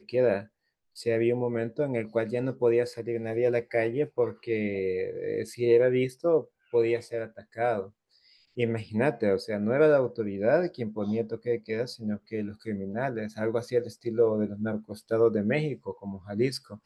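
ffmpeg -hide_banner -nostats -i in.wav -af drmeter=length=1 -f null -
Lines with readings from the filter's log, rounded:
Channel 1: DR: 10.9
Overall DR: 10.9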